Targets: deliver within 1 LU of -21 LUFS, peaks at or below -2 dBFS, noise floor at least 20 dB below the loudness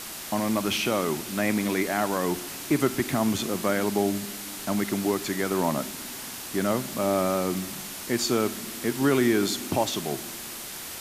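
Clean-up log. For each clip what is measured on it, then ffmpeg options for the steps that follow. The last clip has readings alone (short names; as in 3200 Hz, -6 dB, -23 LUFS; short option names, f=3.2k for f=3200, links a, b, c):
noise floor -38 dBFS; noise floor target -47 dBFS; loudness -27.0 LUFS; peak -10.0 dBFS; loudness target -21.0 LUFS
-> -af "afftdn=nr=9:nf=-38"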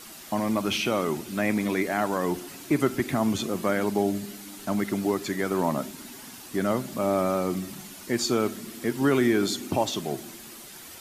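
noise floor -44 dBFS; noise floor target -47 dBFS
-> -af "afftdn=nr=6:nf=-44"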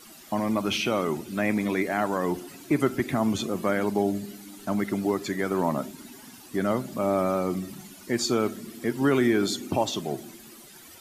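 noise floor -48 dBFS; loudness -27.0 LUFS; peak -10.0 dBFS; loudness target -21.0 LUFS
-> -af "volume=6dB"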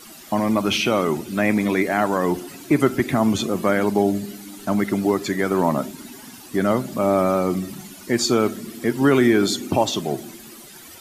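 loudness -21.0 LUFS; peak -4.0 dBFS; noise floor -42 dBFS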